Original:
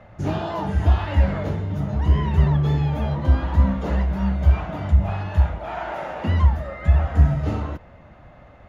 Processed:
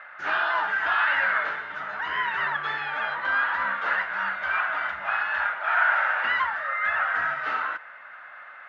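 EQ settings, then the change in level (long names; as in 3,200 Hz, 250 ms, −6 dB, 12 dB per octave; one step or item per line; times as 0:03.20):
high-pass with resonance 1,500 Hz, resonance Q 4.3
high-frequency loss of the air 260 metres
+7.5 dB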